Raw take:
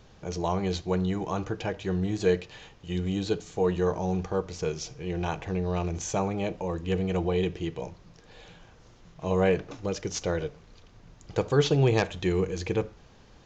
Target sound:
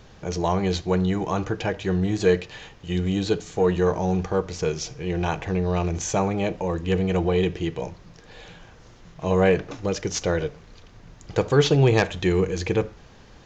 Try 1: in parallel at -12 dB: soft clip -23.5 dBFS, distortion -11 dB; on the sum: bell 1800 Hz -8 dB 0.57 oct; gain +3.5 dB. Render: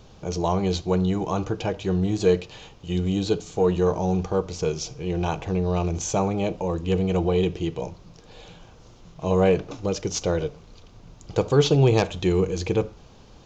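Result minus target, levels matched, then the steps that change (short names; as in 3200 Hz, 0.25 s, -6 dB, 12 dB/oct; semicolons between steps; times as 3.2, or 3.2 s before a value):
2000 Hz band -5.5 dB
change: bell 1800 Hz +2.5 dB 0.57 oct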